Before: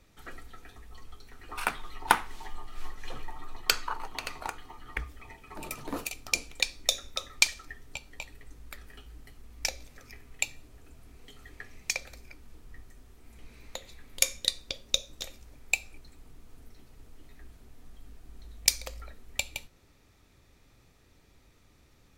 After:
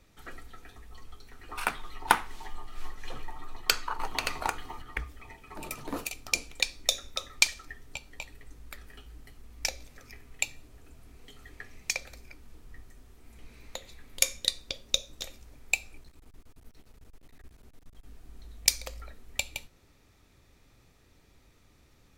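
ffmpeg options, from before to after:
-filter_complex "[0:a]asettb=1/sr,asplit=3[a][b][c];[a]atrim=end=3.994[d];[b]atrim=start=3.99:end=4.82,asetpts=PTS-STARTPTS,afade=t=in:d=0.004:c=qsin,afade=t=out:st=0.826:d=0.004:c=qsin,acontrast=47[e];[c]atrim=start=4.816[f];[d][e]acrossfade=d=0.004:c1=hsin:c2=qsin[g];[g][f]acrossfade=d=0.004:c1=qsin:c2=hsin,asettb=1/sr,asplit=3[h][i][j];[h]atrim=end=16.034[k];[i]atrim=start=16.03:end=18.1,asetpts=PTS-STARTPTS,afade=t=in:d=0.004:c=qsin,afade=t=out:st=2.066:d=0.004:c=qsin,aeval=exprs='clip(val(0),-1,0.00168)':c=same[l];[j]atrim=start=18.096[m];[k][l]acrossfade=d=0.004:c1=hsin:c2=qsin[n];[n][m]acrossfade=d=0.004:c1=qsin:c2=hsin"

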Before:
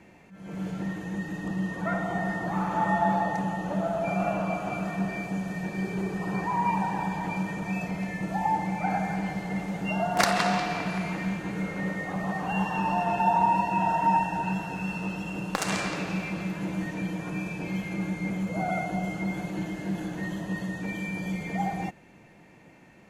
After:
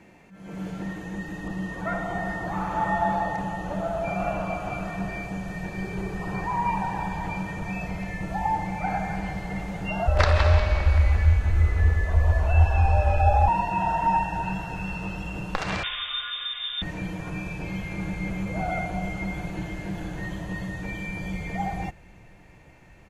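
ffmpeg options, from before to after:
-filter_complex "[0:a]asettb=1/sr,asplit=3[a][b][c];[a]atrim=end=10.074[d];[b]atrim=start=10.07:end=13.48,asetpts=PTS-STARTPTS,afade=t=in:d=0.004:c=qsin,afade=t=out:st=3.406:d=0.004:c=qsin,afreqshift=-110[e];[c]atrim=start=13.476[f];[d][e]acrossfade=d=0.004:c1=hsin:c2=qsin[g];[g][f]acrossfade=d=0.004:c1=qsin:c2=hsin,asettb=1/sr,asplit=3[h][i][j];[h]atrim=end=15.834[k];[i]atrim=start=15.83:end=16.82,asetpts=PTS-STARTPTS,afade=t=in:d=0.004:c=qsin,afade=t=out:st=0.986:d=0.004:c=qsin,lowpass=f=3.2k:t=q:w=0.5098,lowpass=f=3.2k:t=q:w=0.6013,lowpass=f=3.2k:t=q:w=0.9,lowpass=f=3.2k:t=q:w=2.563,afreqshift=-3800[l];[j]atrim=start=16.816[m];[k][l]acrossfade=d=0.004:c1=hsin:c2=qsin[n];[n][m]acrossfade=d=0.004:c1=qsin:c2=hsin,asplit=2[o][p];[p]afade=t=in:st=17.41:d=0.01,afade=t=out:st=18.37:d=0.01,aecho=0:1:480|960|1440|1920|2400|2880|3360|3840|4320|4800|5280:0.398107|0.278675|0.195073|0.136551|0.0955855|0.0669099|0.0468369|0.0327858|0.0229501|0.0160651|0.0112455[q];[o][q]amix=inputs=2:normalize=0,acrossover=split=4800[r][s];[s]acompressor=threshold=-56dB:ratio=4:attack=1:release=60[t];[r][t]amix=inputs=2:normalize=0,asubboost=boost=10:cutoff=68,volume=1dB"

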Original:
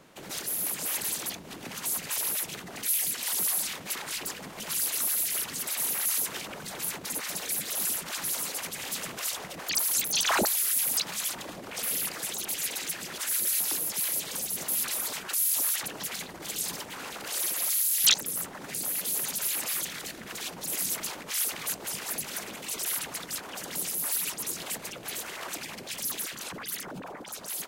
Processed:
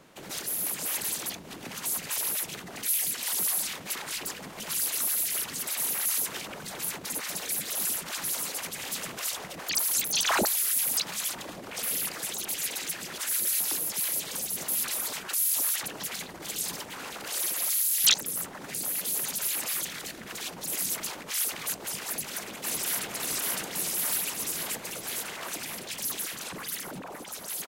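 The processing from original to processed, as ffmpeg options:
-filter_complex "[0:a]asplit=2[a][b];[b]afade=t=in:st=22.07:d=0.01,afade=t=out:st=23.09:d=0.01,aecho=0:1:560|1120|1680|2240|2800|3360|3920|4480|5040|5600|6160|6720:0.944061|0.708046|0.531034|0.398276|0.298707|0.22403|0.168023|0.126017|0.0945127|0.0708845|0.0531634|0.0398725[c];[a][c]amix=inputs=2:normalize=0,asettb=1/sr,asplit=3[d][e][f];[d]atrim=end=26.254[g];[e]atrim=start=26.25:end=26.78,asetpts=PTS-STARTPTS,afade=t=in:d=0.004:c=qsin,afade=t=out:st=0.526:d=0.004:c=qsin,asplit=2[h][i];[i]adelay=46,volume=-11dB[j];[h][j]amix=inputs=2:normalize=0,atrim=end_sample=23373[k];[f]atrim=start=26.776[l];[g][k]acrossfade=d=0.004:c1=hsin:c2=qsin[m];[m][l]acrossfade=d=0.004:c1=qsin:c2=hsin"

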